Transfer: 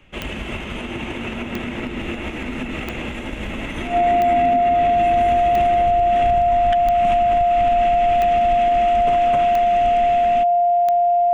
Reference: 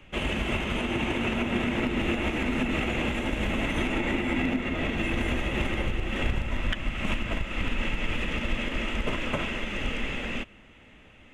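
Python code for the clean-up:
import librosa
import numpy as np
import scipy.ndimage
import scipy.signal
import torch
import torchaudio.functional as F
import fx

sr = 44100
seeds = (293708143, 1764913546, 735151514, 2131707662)

y = fx.fix_declick_ar(x, sr, threshold=10.0)
y = fx.notch(y, sr, hz=700.0, q=30.0)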